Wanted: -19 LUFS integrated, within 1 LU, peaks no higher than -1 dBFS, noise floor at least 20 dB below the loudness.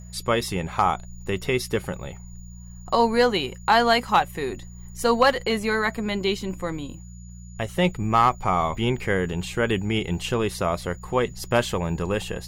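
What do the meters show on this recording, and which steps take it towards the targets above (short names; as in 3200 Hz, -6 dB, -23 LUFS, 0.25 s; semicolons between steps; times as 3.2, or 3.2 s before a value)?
hum 60 Hz; harmonics up to 180 Hz; hum level -38 dBFS; steady tone 6900 Hz; tone level -51 dBFS; loudness -24.0 LUFS; peak -8.0 dBFS; loudness target -19.0 LUFS
-> de-hum 60 Hz, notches 3; notch 6900 Hz, Q 30; gain +5 dB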